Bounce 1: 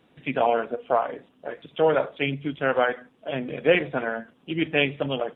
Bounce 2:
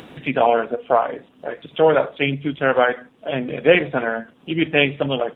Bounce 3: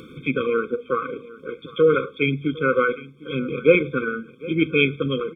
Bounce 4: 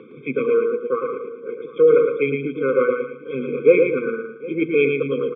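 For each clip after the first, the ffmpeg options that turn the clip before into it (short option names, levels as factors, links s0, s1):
-af "acompressor=mode=upward:threshold=0.0178:ratio=2.5,volume=1.88"
-af "aecho=1:1:755:0.1,afftfilt=real='re*eq(mod(floor(b*sr/1024/520),2),0)':imag='im*eq(mod(floor(b*sr/1024/520),2),0)':win_size=1024:overlap=0.75"
-af "highpass=f=150:w=0.5412,highpass=f=150:w=1.3066,equalizer=f=170:t=q:w=4:g=-8,equalizer=f=300:t=q:w=4:g=-4,equalizer=f=430:t=q:w=4:g=6,equalizer=f=700:t=q:w=4:g=-3,equalizer=f=1400:t=q:w=4:g=-9,lowpass=f=2300:w=0.5412,lowpass=f=2300:w=1.3066,aecho=1:1:113|226|339|452:0.596|0.197|0.0649|0.0214"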